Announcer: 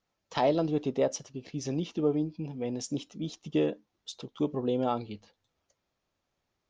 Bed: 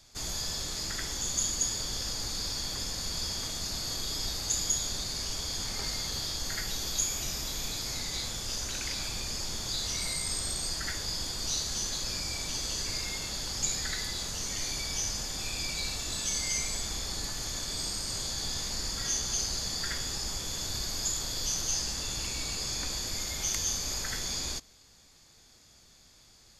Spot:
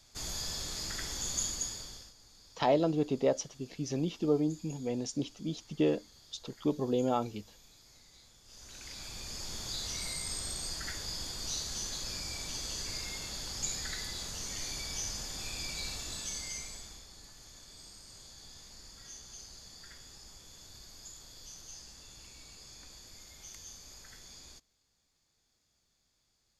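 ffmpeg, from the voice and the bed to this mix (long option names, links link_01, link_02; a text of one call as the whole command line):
ffmpeg -i stem1.wav -i stem2.wav -filter_complex "[0:a]adelay=2250,volume=-1dB[link_01];[1:a]volume=16dB,afade=type=out:start_time=1.38:duration=0.75:silence=0.0891251,afade=type=in:start_time=8.44:duration=1.15:silence=0.105925,afade=type=out:start_time=15.94:duration=1.13:silence=0.223872[link_02];[link_01][link_02]amix=inputs=2:normalize=0" out.wav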